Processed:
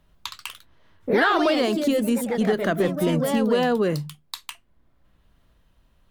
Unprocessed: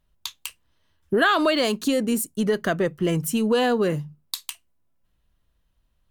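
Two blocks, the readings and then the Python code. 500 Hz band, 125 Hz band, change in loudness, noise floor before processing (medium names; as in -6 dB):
+1.0 dB, +0.5 dB, +1.0 dB, -69 dBFS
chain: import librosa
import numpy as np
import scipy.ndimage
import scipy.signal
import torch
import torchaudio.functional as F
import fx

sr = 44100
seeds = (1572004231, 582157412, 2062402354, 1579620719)

y = fx.echo_pitch(x, sr, ms=94, semitones=2, count=3, db_per_echo=-6.0)
y = fx.high_shelf(y, sr, hz=3700.0, db=-7.5)
y = fx.band_squash(y, sr, depth_pct=40)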